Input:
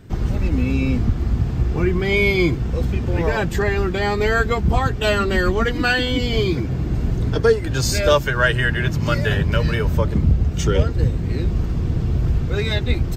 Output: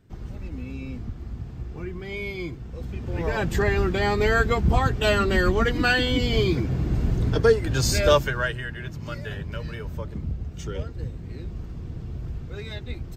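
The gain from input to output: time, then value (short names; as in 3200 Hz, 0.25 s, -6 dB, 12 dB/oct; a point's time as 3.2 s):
2.71 s -15 dB
3.55 s -2.5 dB
8.18 s -2.5 dB
8.64 s -14 dB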